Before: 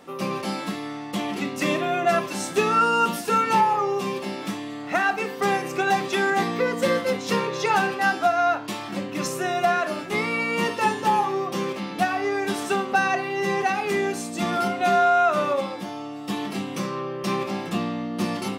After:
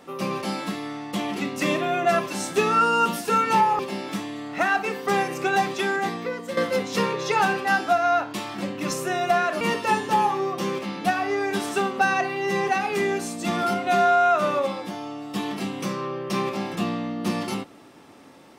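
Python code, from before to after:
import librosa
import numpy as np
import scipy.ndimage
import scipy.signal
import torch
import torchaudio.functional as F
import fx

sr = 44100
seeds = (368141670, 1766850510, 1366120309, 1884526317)

y = fx.edit(x, sr, fx.cut(start_s=3.79, length_s=0.34),
    fx.fade_out_to(start_s=5.91, length_s=1.0, floor_db=-11.0),
    fx.cut(start_s=9.95, length_s=0.6), tone=tone)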